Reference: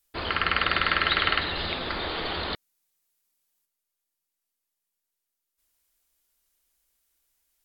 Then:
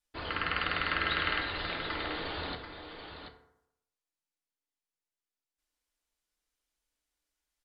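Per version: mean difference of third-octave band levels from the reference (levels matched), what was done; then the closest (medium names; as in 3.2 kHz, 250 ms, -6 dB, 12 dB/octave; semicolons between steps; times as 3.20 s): 2.0 dB: distance through air 51 m; on a send: delay 733 ms -8.5 dB; on the sum: FDN reverb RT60 0.8 s, low-frequency decay 0.95×, high-frequency decay 0.5×, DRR 4.5 dB; trim -8 dB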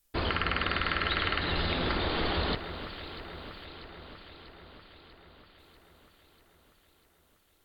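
3.0 dB: bass shelf 420 Hz +8 dB; compression, threshold -26 dBFS, peak gain reduction 8.5 dB; on a send: echo whose repeats swap between lows and highs 321 ms, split 1.9 kHz, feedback 79%, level -10 dB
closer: first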